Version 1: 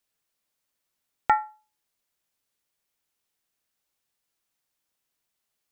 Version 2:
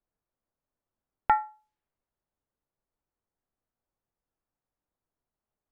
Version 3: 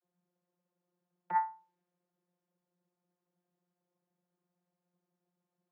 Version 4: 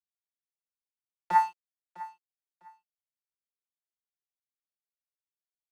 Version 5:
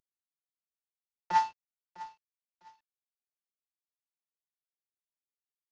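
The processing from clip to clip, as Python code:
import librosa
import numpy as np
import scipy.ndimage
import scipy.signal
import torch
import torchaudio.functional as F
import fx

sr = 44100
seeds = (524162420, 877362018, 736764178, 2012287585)

y1 = fx.high_shelf(x, sr, hz=2200.0, db=-10.0)
y1 = fx.env_lowpass(y1, sr, base_hz=1200.0, full_db=-34.0)
y1 = fx.low_shelf(y1, sr, hz=68.0, db=11.5)
y2 = y1 + 0.49 * np.pad(y1, (int(5.5 * sr / 1000.0), 0))[:len(y1)]
y2 = fx.over_compress(y2, sr, threshold_db=-26.0, ratio=-0.5)
y2 = fx.vocoder(y2, sr, bands=32, carrier='saw', carrier_hz=177.0)
y3 = np.sign(y2) * np.maximum(np.abs(y2) - 10.0 ** (-49.5 / 20.0), 0.0)
y3 = fx.echo_feedback(y3, sr, ms=653, feedback_pct=22, wet_db=-18)
y3 = F.gain(torch.from_numpy(y3), 8.5).numpy()
y4 = fx.cvsd(y3, sr, bps=32000)
y4 = F.gain(torch.from_numpy(y4), -3.0).numpy()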